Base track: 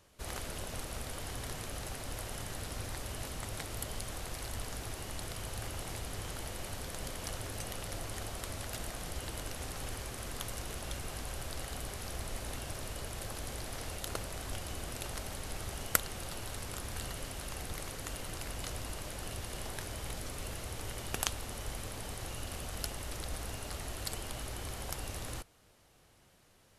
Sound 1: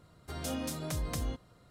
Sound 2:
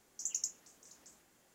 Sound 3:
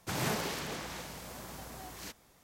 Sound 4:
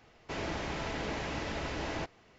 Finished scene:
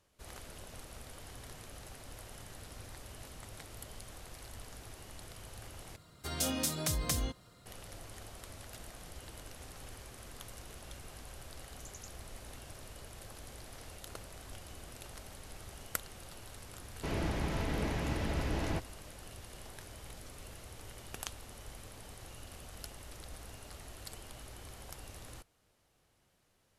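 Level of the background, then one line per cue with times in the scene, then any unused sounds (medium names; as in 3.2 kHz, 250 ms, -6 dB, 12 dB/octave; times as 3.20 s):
base track -8.5 dB
5.96 s: replace with 1 -0.5 dB + treble shelf 2.2 kHz +9 dB
11.60 s: add 2 -16 dB
16.74 s: add 4 -3.5 dB + bass shelf 280 Hz +11 dB
not used: 3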